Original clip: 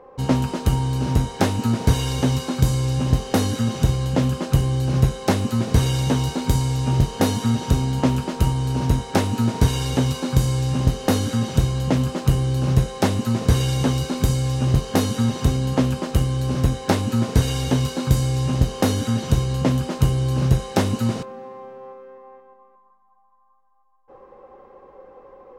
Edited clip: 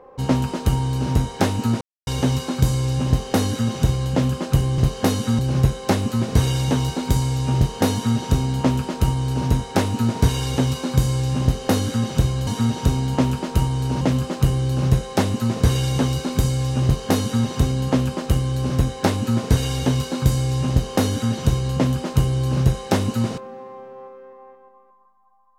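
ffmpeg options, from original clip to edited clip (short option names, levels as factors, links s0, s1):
-filter_complex "[0:a]asplit=7[s0][s1][s2][s3][s4][s5][s6];[s0]atrim=end=1.81,asetpts=PTS-STARTPTS,afade=t=out:st=1.806:d=0.004:c=hsin[s7];[s1]atrim=start=1.81:end=2.07,asetpts=PTS-STARTPTS,volume=0[s8];[s2]atrim=start=2.07:end=4.782,asetpts=PTS-STARTPTS,afade=t=in:d=0.004:c=hsin[s9];[s3]atrim=start=14.688:end=15.302[s10];[s4]atrim=start=4.778:end=11.862[s11];[s5]atrim=start=7.318:end=8.862[s12];[s6]atrim=start=11.858[s13];[s7][s8][s9]concat=n=3:v=0:a=1[s14];[s14][s10]acrossfade=d=0.004:c1=hsin:c2=hsin[s15];[s15][s11]acrossfade=d=0.004:c1=hsin:c2=hsin[s16];[s16][s12]acrossfade=d=0.004:c1=hsin:c2=hsin[s17];[s17][s13]acrossfade=d=0.004:c1=hsin:c2=hsin"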